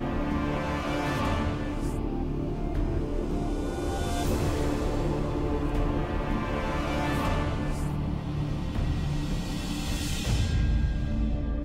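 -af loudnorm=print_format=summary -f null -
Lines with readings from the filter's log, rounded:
Input Integrated:    -29.8 LUFS
Input True Peak:     -15.1 dBTP
Input LRA:             1.0 LU
Input Threshold:     -39.8 LUFS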